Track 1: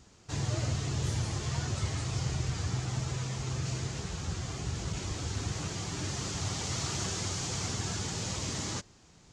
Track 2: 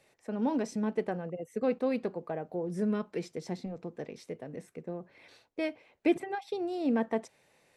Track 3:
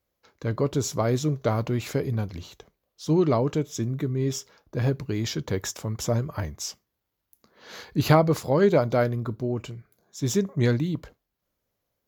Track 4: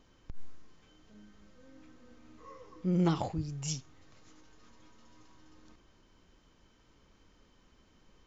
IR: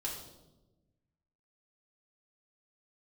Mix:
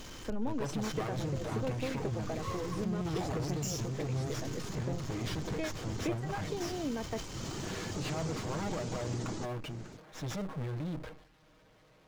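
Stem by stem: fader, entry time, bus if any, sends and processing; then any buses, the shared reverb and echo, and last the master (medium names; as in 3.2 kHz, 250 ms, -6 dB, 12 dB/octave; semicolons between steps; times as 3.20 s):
-9.5 dB, 0.65 s, bus B, no send, peaking EQ 310 Hz +13 dB 2.8 oct; upward compressor, threshold -28 dBFS
+2.5 dB, 0.00 s, bus B, no send, none
-18.5 dB, 0.00 s, bus A, no send, comb filter that takes the minimum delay 6.4 ms; low-pass 3.5 kHz 12 dB/octave
-6.5 dB, 0.00 s, bus A, no send, treble shelf 4.1 kHz +10.5 dB
bus A: 0.0 dB, power-law waveshaper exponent 0.5; peak limiter -32 dBFS, peak gain reduction 10.5 dB
bus B: 0.0 dB, reverb removal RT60 0.56 s; compression 4:1, threshold -35 dBFS, peak gain reduction 14.5 dB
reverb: none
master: decay stretcher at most 100 dB/s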